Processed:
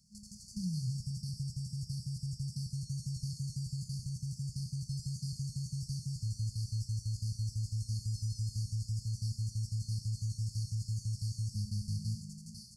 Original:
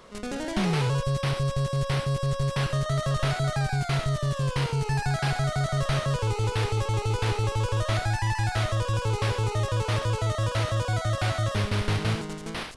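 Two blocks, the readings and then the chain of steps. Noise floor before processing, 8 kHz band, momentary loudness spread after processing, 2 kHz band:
-35 dBFS, -7.0 dB, 3 LU, under -40 dB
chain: HPF 140 Hz 6 dB/oct; FFT band-reject 220–4300 Hz; two-slope reverb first 0.29 s, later 3.7 s, from -18 dB, DRR 7.5 dB; gain -7.5 dB

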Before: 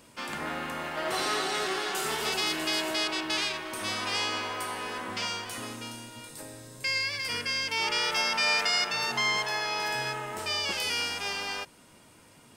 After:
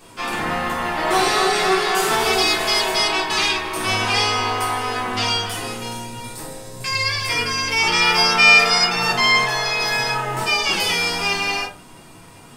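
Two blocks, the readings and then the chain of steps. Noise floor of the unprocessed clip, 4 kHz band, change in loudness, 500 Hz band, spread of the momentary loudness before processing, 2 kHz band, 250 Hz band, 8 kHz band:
-56 dBFS, +10.0 dB, +11.5 dB, +11.5 dB, 12 LU, +12.0 dB, +10.5 dB, +9.5 dB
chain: shoebox room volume 160 m³, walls furnished, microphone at 3.6 m; gain +3.5 dB

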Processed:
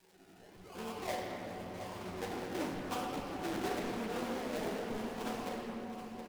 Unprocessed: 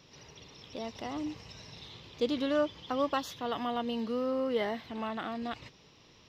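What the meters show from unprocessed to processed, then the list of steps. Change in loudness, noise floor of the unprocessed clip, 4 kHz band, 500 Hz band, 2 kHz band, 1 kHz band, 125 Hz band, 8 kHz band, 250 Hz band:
-6.0 dB, -60 dBFS, -5.5 dB, -6.5 dB, -2.0 dB, -3.5 dB, +2.5 dB, +3.0 dB, -5.0 dB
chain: recorder AGC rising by 7.2 dB/s; HPF 340 Hz 12 dB/oct; spectral noise reduction 6 dB; high shelf 7800 Hz +10.5 dB; in parallel at +2.5 dB: limiter -29 dBFS, peak gain reduction 10.5 dB; on the sum: fixed phaser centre 2800 Hz, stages 4; octave resonator F#, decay 0.37 s; decimation with a swept rate 32×, swing 60% 0.92 Hz; crackle 360/s -66 dBFS; on a send: echo 0.721 s -10.5 dB; on the sum: shoebox room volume 220 m³, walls hard, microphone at 0.62 m; Doppler distortion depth 0.48 ms; gain +12 dB

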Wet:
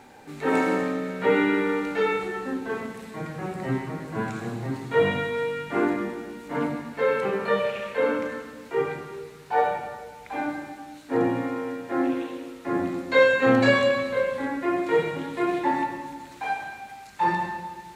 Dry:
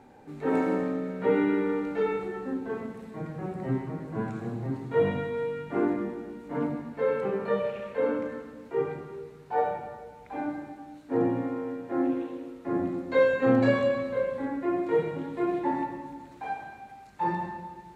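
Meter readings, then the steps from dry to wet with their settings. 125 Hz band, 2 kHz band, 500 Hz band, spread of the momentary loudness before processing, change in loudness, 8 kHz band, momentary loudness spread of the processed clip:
+1.0 dB, +10.0 dB, +3.0 dB, 15 LU, +3.5 dB, n/a, 15 LU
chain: tilt shelf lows -6.5 dB, about 1200 Hz; gain +7.5 dB

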